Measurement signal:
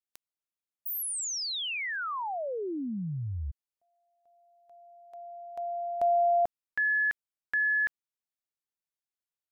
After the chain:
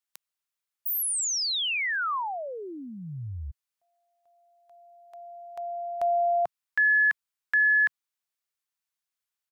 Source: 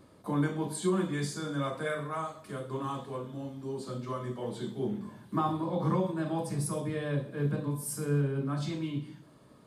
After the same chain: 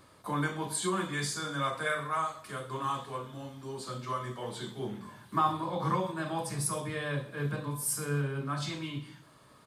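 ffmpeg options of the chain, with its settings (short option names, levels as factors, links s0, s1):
-af "firequalizer=gain_entry='entry(120,0);entry(200,-5);entry(1100,7)':delay=0.05:min_phase=1,volume=0.841"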